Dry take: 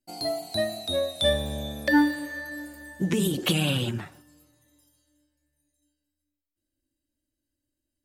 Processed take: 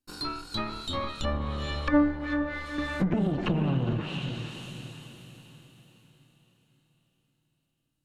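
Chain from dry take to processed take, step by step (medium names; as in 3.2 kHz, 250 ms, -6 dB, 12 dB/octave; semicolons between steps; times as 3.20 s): comb filter that takes the minimum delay 0.72 ms; on a send: echo that smears into a reverb 465 ms, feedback 44%, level -7 dB; on the sum: low-pass that closes with the level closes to 1.1 kHz, closed at -23 dBFS; 2.78–3.93 s: three bands compressed up and down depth 70%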